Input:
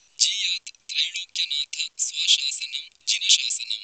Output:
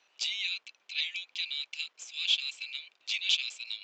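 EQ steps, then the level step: BPF 460–2200 Hz; 0.0 dB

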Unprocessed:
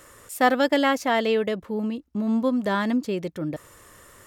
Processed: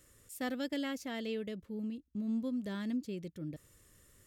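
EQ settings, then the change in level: passive tone stack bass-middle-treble 10-0-1; low shelf 120 Hz -11 dB; +8.5 dB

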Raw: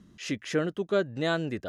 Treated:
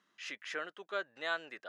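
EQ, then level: HPF 1300 Hz 12 dB/oct; high shelf 2100 Hz -8.5 dB; high shelf 6300 Hz -10.5 dB; +2.5 dB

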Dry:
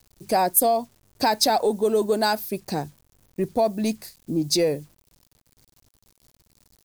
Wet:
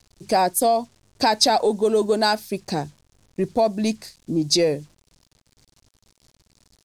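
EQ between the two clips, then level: air absorption 81 m; high shelf 4300 Hz +9.5 dB; +2.0 dB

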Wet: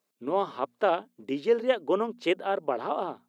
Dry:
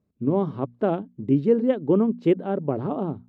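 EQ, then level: HPF 680 Hz 12 dB/oct; high shelf 2400 Hz +10 dB; +4.0 dB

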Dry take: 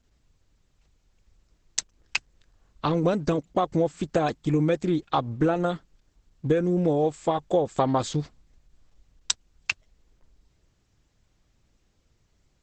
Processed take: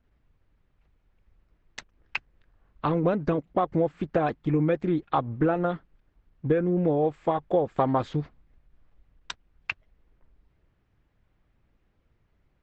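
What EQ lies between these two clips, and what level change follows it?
Chebyshev low-pass 2000 Hz, order 2; 0.0 dB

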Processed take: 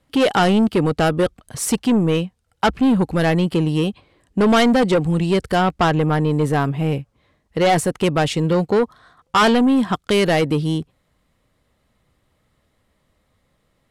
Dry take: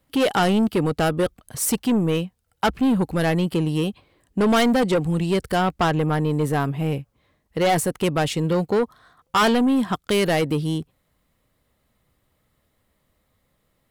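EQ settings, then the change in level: Bessel low-pass 8400 Hz, order 2; +3.5 dB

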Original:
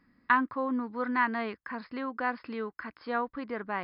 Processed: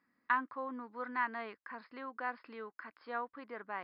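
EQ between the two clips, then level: HPF 760 Hz 6 dB/oct; high shelf 2800 Hz -9 dB; -4.0 dB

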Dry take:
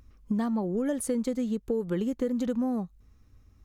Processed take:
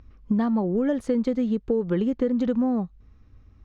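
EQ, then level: air absorption 220 m; high shelf 5300 Hz +4.5 dB; +5.5 dB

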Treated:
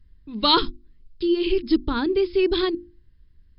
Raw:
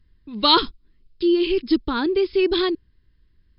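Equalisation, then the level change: low shelf 180 Hz +9 dB; notches 50/100/150/200/250/300/350 Hz; -2.5 dB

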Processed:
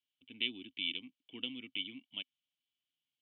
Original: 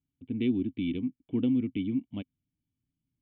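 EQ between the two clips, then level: band-pass 3100 Hz, Q 4.7; +14.0 dB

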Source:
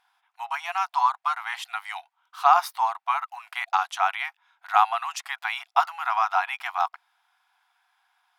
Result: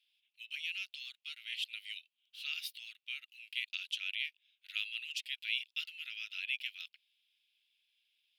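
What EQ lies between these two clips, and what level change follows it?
elliptic high-pass 2700 Hz, stop band 60 dB; air absorption 480 m; differentiator; +18.0 dB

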